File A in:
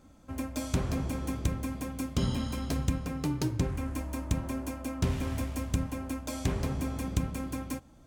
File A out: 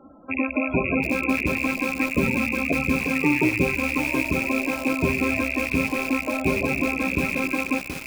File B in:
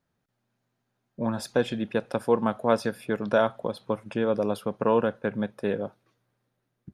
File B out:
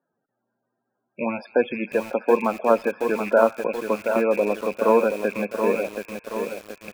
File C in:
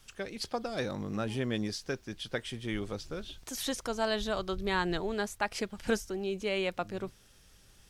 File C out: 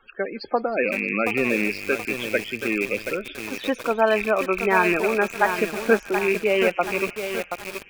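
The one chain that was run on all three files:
rattle on loud lows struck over -37 dBFS, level -20 dBFS; three-band isolator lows -17 dB, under 230 Hz, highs -15 dB, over 2.7 kHz; loudest bins only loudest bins 32; feedback echo behind a high-pass 157 ms, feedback 82%, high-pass 2 kHz, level -16 dB; bit-crushed delay 727 ms, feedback 55%, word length 7-bit, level -6.5 dB; normalise loudness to -23 LUFS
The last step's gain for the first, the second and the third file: +13.5 dB, +5.0 dB, +12.5 dB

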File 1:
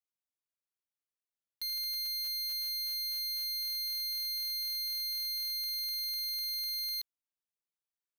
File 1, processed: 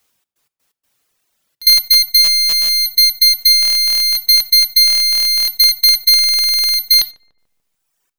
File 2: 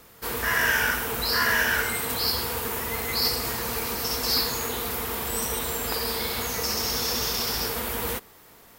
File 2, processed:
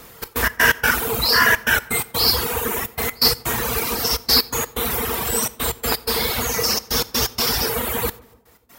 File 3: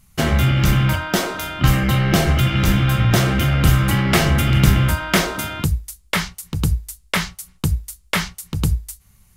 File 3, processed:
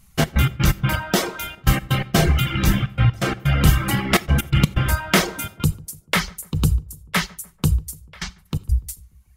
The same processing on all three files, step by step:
trance gate "xx.x.x.xxxx" 126 bpm -24 dB; gated-style reverb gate 110 ms flat, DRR 8.5 dB; reverb removal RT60 1.5 s; filtered feedback delay 146 ms, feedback 55%, low-pass 1.2 kHz, level -22 dB; peak normalisation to -2 dBFS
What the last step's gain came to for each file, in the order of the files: +30.5 dB, +9.0 dB, +0.5 dB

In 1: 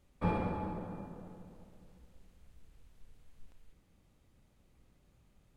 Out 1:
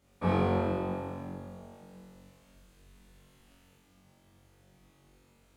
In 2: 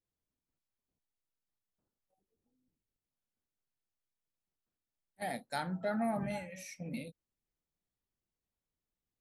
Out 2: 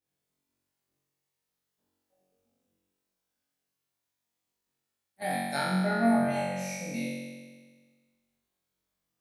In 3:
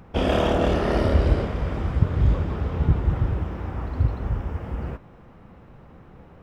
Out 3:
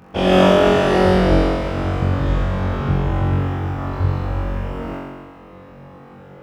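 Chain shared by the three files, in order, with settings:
high-pass 140 Hz 6 dB/octave; flutter echo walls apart 3.7 m, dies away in 1.5 s; trim +2 dB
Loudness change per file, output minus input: +6.5 LU, +9.0 LU, +6.0 LU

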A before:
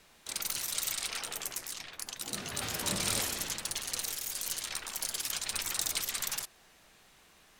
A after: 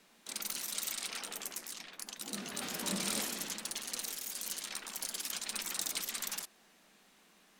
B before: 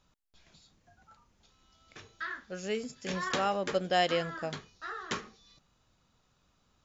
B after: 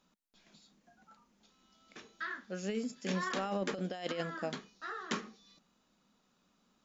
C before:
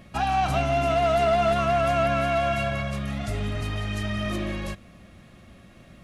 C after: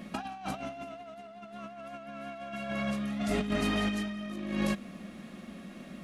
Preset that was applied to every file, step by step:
resonant low shelf 150 Hz -10.5 dB, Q 3; compressor with a negative ratio -30 dBFS, ratio -0.5; trim -4 dB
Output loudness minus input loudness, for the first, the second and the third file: -4.0 LU, -5.0 LU, -10.0 LU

